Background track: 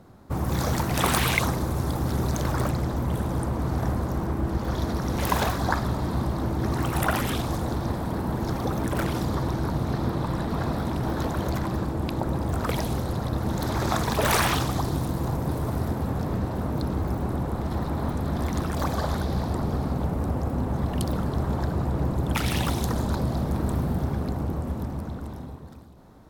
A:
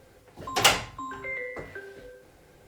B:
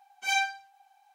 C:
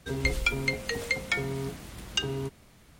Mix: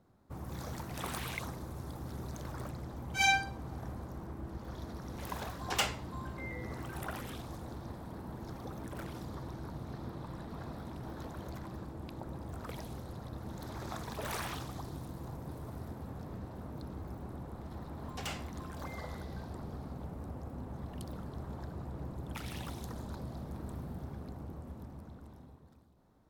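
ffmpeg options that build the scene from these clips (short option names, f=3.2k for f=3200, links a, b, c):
-filter_complex "[1:a]asplit=2[a][b];[0:a]volume=-16.5dB[c];[b]alimiter=limit=-9.5dB:level=0:latency=1:release=45[d];[2:a]atrim=end=1.14,asetpts=PTS-STARTPTS,volume=-0.5dB,afade=t=in:d=0.004:c=hsin,afade=t=out:st=1.136:d=0.004:c=hsin,adelay=2920[e];[a]atrim=end=2.67,asetpts=PTS-STARTPTS,volume=-12dB,afade=t=in:d=0.004:c=hsin,afade=t=out:st=2.666:d=0.004:c=hsin,adelay=5140[f];[d]atrim=end=2.67,asetpts=PTS-STARTPTS,volume=-18dB,afade=t=in:d=0.004:c=hsin,afade=t=out:st=2.666:d=0.004:c=hsin,adelay=17610[g];[c][e][f][g]amix=inputs=4:normalize=0"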